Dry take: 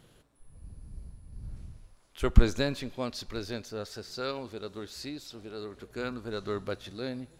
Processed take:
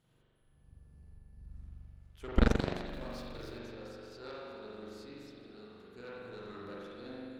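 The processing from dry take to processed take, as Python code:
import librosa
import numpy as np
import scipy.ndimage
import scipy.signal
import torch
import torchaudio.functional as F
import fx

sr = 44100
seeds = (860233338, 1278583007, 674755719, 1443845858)

y = fx.zero_step(x, sr, step_db=-40.5, at=(2.86, 3.58))
y = fx.rev_spring(y, sr, rt60_s=2.4, pass_ms=(42,), chirp_ms=50, drr_db=-7.5)
y = fx.cheby_harmonics(y, sr, harmonics=(3, 4, 6, 7), levels_db=(-8, -14, -17, -31), full_scale_db=-3.5)
y = y * librosa.db_to_amplitude(-8.5)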